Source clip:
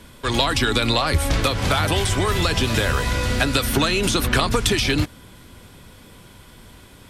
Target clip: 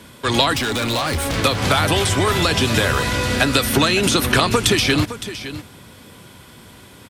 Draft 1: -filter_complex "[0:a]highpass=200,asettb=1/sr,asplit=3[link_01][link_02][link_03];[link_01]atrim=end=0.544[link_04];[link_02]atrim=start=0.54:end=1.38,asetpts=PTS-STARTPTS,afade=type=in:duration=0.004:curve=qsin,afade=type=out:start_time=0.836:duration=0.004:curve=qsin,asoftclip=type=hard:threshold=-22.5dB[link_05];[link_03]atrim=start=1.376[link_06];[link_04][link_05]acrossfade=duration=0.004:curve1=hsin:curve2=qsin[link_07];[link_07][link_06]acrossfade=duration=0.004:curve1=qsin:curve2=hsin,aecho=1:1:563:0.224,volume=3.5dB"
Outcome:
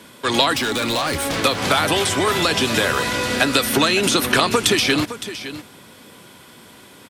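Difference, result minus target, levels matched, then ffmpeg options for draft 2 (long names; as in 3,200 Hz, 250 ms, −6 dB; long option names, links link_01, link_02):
125 Hz band −7.0 dB
-filter_complex "[0:a]highpass=92,asettb=1/sr,asplit=3[link_01][link_02][link_03];[link_01]atrim=end=0.544[link_04];[link_02]atrim=start=0.54:end=1.38,asetpts=PTS-STARTPTS,afade=type=in:duration=0.004:curve=qsin,afade=type=out:start_time=0.836:duration=0.004:curve=qsin,asoftclip=type=hard:threshold=-22.5dB[link_05];[link_03]atrim=start=1.376[link_06];[link_04][link_05]acrossfade=duration=0.004:curve1=hsin:curve2=qsin[link_07];[link_07][link_06]acrossfade=duration=0.004:curve1=qsin:curve2=hsin,aecho=1:1:563:0.224,volume=3.5dB"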